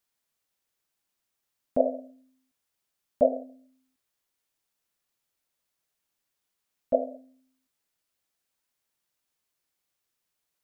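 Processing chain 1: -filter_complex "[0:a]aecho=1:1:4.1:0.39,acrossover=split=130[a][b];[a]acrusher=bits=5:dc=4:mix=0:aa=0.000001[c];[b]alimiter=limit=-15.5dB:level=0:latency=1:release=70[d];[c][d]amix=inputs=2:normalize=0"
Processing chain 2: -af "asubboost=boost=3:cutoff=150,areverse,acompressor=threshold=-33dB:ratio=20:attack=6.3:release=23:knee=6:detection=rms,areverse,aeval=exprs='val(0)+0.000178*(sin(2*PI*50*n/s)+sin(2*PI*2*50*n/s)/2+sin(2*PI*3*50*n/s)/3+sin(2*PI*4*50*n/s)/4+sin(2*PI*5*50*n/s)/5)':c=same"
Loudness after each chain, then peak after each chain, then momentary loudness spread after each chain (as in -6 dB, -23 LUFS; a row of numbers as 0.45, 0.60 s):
-32.5, -41.5 LUFS; -15.0, -25.5 dBFS; 18, 13 LU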